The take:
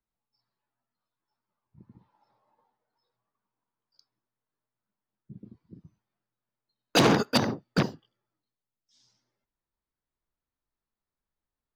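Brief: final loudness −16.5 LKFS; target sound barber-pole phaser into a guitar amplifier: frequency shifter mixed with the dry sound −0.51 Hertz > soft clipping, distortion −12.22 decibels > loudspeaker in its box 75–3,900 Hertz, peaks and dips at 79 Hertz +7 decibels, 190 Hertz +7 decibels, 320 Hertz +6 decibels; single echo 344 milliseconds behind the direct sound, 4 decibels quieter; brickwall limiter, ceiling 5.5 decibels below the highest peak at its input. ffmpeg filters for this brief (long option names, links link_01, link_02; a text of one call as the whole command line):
ffmpeg -i in.wav -filter_complex "[0:a]alimiter=limit=-18dB:level=0:latency=1,aecho=1:1:344:0.631,asplit=2[link_01][link_02];[link_02]afreqshift=-0.51[link_03];[link_01][link_03]amix=inputs=2:normalize=1,asoftclip=threshold=-26.5dB,highpass=75,equalizer=frequency=79:width_type=q:width=4:gain=7,equalizer=frequency=190:width_type=q:width=4:gain=7,equalizer=frequency=320:width_type=q:width=4:gain=6,lowpass=frequency=3900:width=0.5412,lowpass=frequency=3900:width=1.3066,volume=17.5dB" out.wav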